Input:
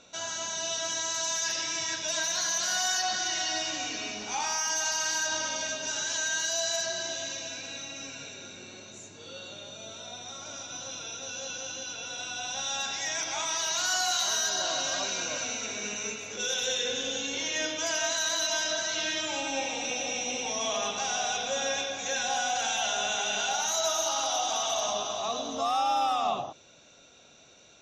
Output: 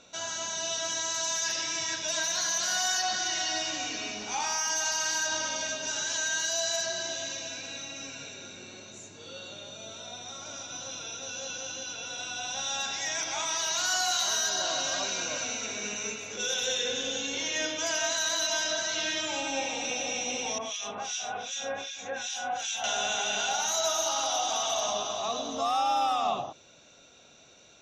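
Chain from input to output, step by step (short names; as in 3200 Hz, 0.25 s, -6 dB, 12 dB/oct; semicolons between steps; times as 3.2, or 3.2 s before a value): 20.58–22.84 harmonic tremolo 2.6 Hz, depth 100%, crossover 2000 Hz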